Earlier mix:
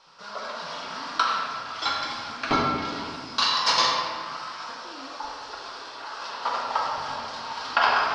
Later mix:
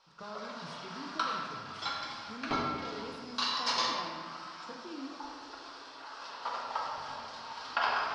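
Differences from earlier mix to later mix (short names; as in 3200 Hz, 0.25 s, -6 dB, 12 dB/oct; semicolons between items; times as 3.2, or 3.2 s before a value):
speech +4.0 dB; background -9.5 dB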